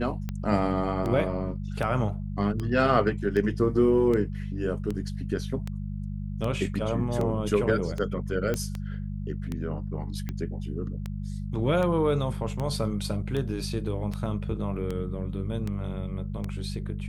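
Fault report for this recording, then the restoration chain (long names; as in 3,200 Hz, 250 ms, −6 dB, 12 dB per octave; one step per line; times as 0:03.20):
mains hum 50 Hz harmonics 4 −33 dBFS
scratch tick 78 rpm −19 dBFS
0:08.54: click −15 dBFS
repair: click removal
hum removal 50 Hz, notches 4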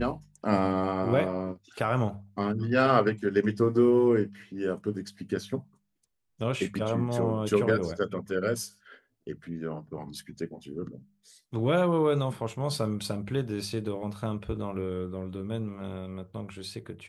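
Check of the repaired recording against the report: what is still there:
none of them is left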